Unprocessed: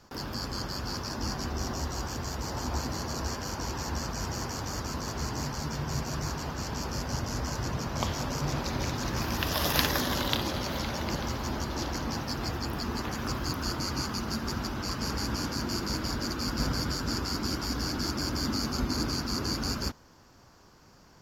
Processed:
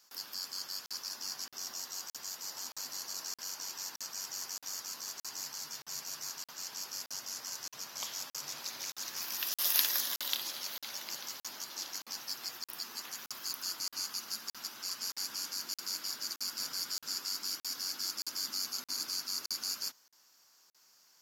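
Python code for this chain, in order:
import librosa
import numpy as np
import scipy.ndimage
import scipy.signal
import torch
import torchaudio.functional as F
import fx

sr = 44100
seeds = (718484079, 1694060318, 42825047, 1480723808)

y = scipy.signal.sosfilt(scipy.signal.butter(4, 120.0, 'highpass', fs=sr, output='sos'), x)
y = np.diff(y, prepend=0.0)
y = fx.buffer_crackle(y, sr, first_s=0.86, period_s=0.62, block=2048, kind='zero')
y = y * librosa.db_to_amplitude(2.0)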